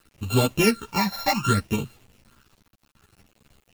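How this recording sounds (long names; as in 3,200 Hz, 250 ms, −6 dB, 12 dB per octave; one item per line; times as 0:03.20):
a buzz of ramps at a fixed pitch in blocks of 32 samples
phaser sweep stages 8, 0.65 Hz, lowest notch 370–1,800 Hz
a quantiser's noise floor 10 bits, dither none
a shimmering, thickened sound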